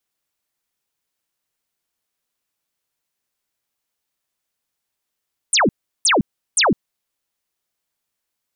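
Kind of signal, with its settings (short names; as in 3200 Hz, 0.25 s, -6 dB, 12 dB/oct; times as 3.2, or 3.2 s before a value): burst of laser zaps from 10000 Hz, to 160 Hz, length 0.16 s sine, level -12 dB, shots 3, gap 0.36 s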